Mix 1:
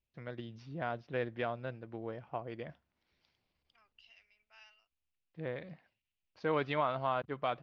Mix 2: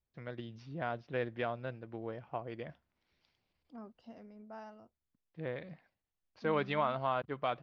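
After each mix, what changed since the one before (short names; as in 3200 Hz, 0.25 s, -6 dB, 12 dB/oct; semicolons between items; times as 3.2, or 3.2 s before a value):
second voice: remove resonant high-pass 2600 Hz, resonance Q 4.5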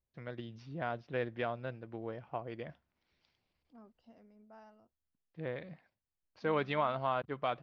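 second voice -8.0 dB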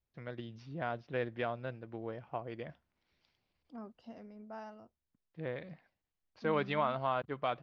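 second voice +10.0 dB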